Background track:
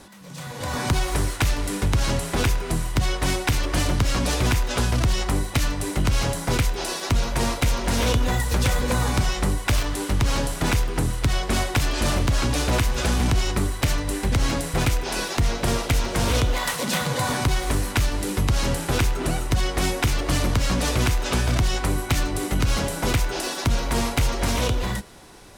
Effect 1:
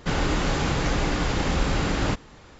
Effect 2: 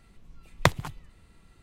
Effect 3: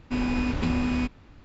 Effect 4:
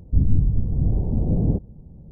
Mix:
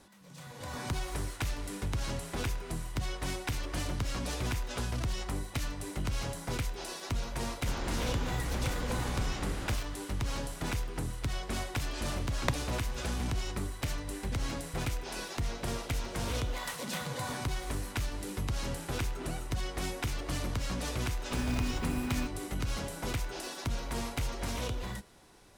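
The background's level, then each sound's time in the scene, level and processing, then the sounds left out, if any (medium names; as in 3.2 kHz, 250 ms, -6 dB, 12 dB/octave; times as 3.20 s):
background track -12.5 dB
7.60 s: add 1 -14.5 dB
11.83 s: add 2 -10.5 dB
21.20 s: add 3 -9.5 dB + block-companded coder 5-bit
not used: 4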